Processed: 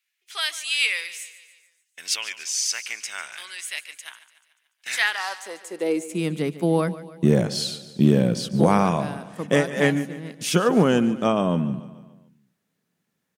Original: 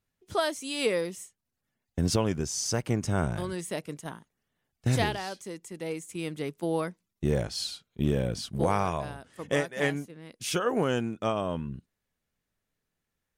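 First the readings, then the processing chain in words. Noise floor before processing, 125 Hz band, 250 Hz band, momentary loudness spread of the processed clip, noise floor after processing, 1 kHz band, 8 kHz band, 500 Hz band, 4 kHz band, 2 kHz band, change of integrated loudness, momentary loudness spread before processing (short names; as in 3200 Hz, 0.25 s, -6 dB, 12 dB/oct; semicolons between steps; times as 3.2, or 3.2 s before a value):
-84 dBFS, +5.0 dB, +9.0 dB, 16 LU, -77 dBFS, +5.0 dB, +7.0 dB, +5.5 dB, +8.0 dB, +9.0 dB, +7.0 dB, 13 LU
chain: high-pass sweep 2300 Hz -> 180 Hz, 4.85–6.25; on a send: feedback echo 0.145 s, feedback 53%, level -16 dB; on the sum: gain +6 dB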